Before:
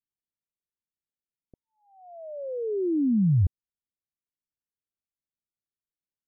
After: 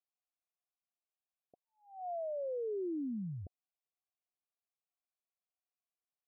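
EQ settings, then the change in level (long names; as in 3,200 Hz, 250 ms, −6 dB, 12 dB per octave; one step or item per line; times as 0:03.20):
formant filter a
+8.0 dB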